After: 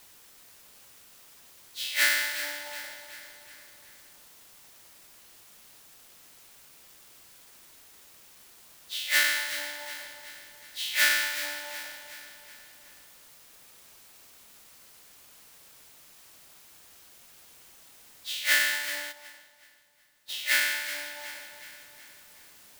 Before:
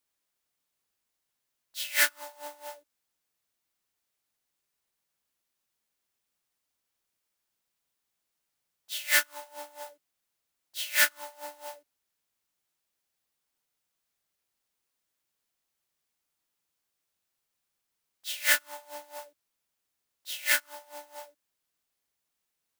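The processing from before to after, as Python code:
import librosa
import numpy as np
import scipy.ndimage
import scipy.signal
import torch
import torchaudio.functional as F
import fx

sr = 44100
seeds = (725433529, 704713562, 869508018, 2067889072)

p1 = fx.spec_trails(x, sr, decay_s=1.31)
p2 = fx.graphic_eq(p1, sr, hz=(250, 2000, 4000), db=(7, 4, 6))
p3 = fx.quant_dither(p2, sr, seeds[0], bits=8, dither='triangular')
p4 = p3 + fx.echo_feedback(p3, sr, ms=371, feedback_pct=50, wet_db=-11, dry=0)
p5 = fx.upward_expand(p4, sr, threshold_db=-44.0, expansion=1.5, at=(19.11, 20.28), fade=0.02)
y = p5 * 10.0 ** (-6.5 / 20.0)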